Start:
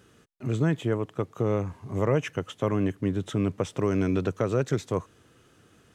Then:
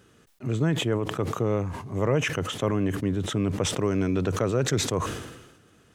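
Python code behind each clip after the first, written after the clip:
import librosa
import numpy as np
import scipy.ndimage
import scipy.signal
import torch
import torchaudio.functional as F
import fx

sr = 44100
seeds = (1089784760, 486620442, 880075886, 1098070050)

y = fx.sustainer(x, sr, db_per_s=54.0)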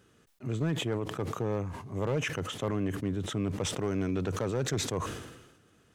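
y = np.clip(x, -10.0 ** (-17.5 / 20.0), 10.0 ** (-17.5 / 20.0))
y = y * 10.0 ** (-5.5 / 20.0)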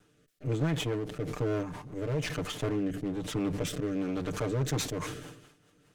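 y = fx.lower_of_two(x, sr, delay_ms=6.7)
y = fx.rotary_switch(y, sr, hz=1.1, then_hz=5.0, switch_at_s=4.28)
y = y * 10.0 ** (2.5 / 20.0)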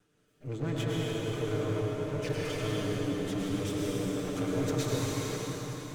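y = x + 10.0 ** (-8.5 / 20.0) * np.pad(x, (int(102 * sr / 1000.0), 0))[:len(x)]
y = fx.rev_plate(y, sr, seeds[0], rt60_s=4.8, hf_ratio=0.85, predelay_ms=105, drr_db=-5.5)
y = y * 10.0 ** (-6.5 / 20.0)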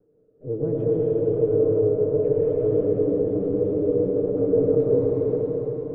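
y = fx.lowpass_res(x, sr, hz=480.0, q=4.9)
y = y + 10.0 ** (-8.5 / 20.0) * np.pad(y, (int(354 * sr / 1000.0), 0))[:len(y)]
y = y * 10.0 ** (2.5 / 20.0)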